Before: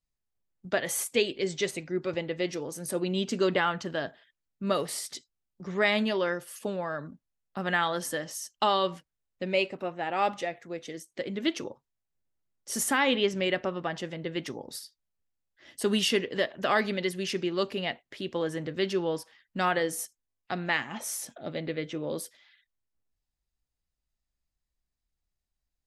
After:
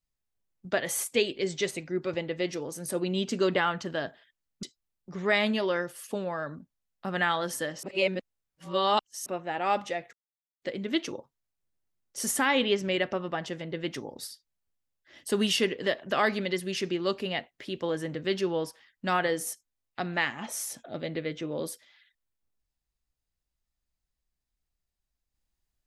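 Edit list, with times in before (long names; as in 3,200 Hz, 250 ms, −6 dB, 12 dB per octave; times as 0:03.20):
0:04.63–0:05.15: remove
0:08.35–0:09.78: reverse
0:10.65–0:11.14: silence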